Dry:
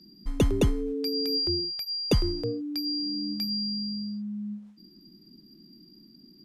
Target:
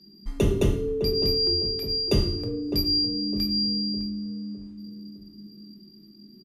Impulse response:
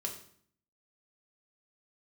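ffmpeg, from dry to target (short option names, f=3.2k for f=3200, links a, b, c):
-filter_complex "[0:a]asettb=1/sr,asplit=3[a][b][c];[a]atrim=end=2.624[d];[b]atrim=start=2.62:end=3.06,asetpts=PTS-STARTPTS,afade=t=in:d=0.004:c=qsin,afade=t=out:st=0.436:d=0.004:c=qsin,highshelf=f=5.7k:g=9[e];[c]atrim=start=3.056[f];[d][e]acrossfade=d=0.004:c1=hsin:c2=qsin[g];[g][f]acrossfade=d=0.004:c1=qsin:c2=hsin,asplit=2[h][i];[i]adelay=608,lowpass=f=870:p=1,volume=-7dB,asplit=2[j][k];[k]adelay=608,lowpass=f=870:p=1,volume=0.46,asplit=2[l][m];[m]adelay=608,lowpass=f=870:p=1,volume=0.46,asplit=2[n][o];[o]adelay=608,lowpass=f=870:p=1,volume=0.46,asplit=2[p][q];[q]adelay=608,lowpass=f=870:p=1,volume=0.46[r];[h][j][l][n][p][r]amix=inputs=6:normalize=0[s];[1:a]atrim=start_sample=2205[t];[s][t]afir=irnorm=-1:irlink=0"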